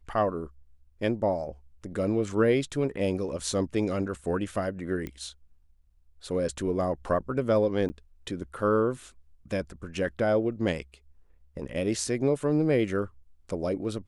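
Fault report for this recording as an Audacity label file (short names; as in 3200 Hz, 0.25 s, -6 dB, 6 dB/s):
5.070000	5.070000	pop -22 dBFS
7.890000	7.900000	gap 10 ms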